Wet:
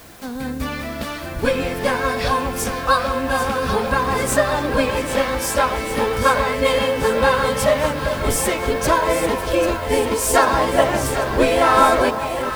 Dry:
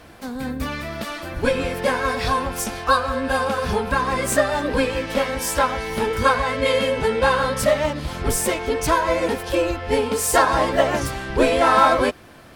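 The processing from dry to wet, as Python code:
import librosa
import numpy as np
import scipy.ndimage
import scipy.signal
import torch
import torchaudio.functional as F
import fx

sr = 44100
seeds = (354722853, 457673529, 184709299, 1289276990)

p1 = fx.quant_dither(x, sr, seeds[0], bits=8, dither='triangular')
p2 = p1 + fx.echo_alternate(p1, sr, ms=396, hz=1000.0, feedback_pct=84, wet_db=-8.0, dry=0)
y = p2 * librosa.db_to_amplitude(1.0)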